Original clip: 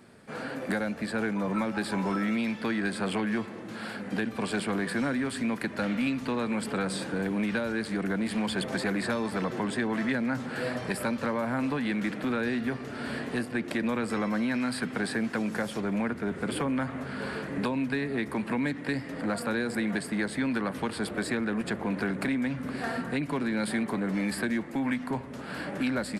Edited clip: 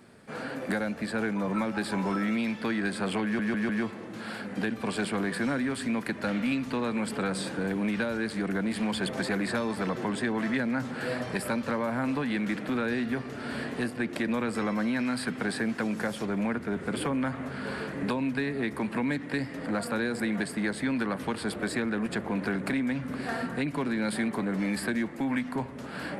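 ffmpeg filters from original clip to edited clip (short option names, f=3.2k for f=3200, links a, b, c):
-filter_complex "[0:a]asplit=4[a][b][c][d];[a]atrim=end=3.392[e];[b]atrim=start=3.238:end=3.392[f];[c]atrim=start=3.238:end=3.392[g];[d]atrim=start=3.238[h];[e][f]acrossfade=d=0.004:c1=hsin:c2=hsin[i];[i][g]acrossfade=d=0.004:c1=hsin:c2=hsin[j];[j][h]acrossfade=d=0.004:c1=hsin:c2=hsin"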